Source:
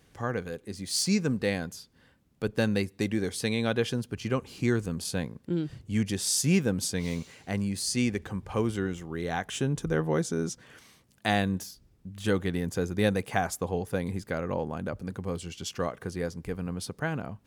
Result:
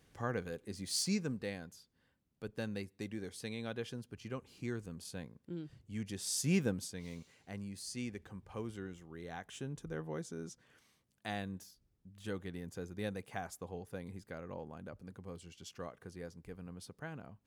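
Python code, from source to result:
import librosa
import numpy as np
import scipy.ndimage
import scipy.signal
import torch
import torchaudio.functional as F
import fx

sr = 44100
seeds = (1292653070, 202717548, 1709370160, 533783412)

y = fx.gain(x, sr, db=fx.line((0.9, -6.0), (1.57, -14.0), (5.97, -14.0), (6.66, -6.0), (6.88, -14.5)))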